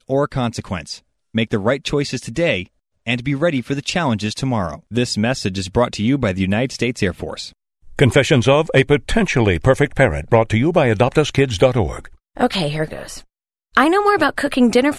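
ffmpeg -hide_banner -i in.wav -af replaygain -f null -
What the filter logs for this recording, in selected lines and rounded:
track_gain = -2.7 dB
track_peak = 0.552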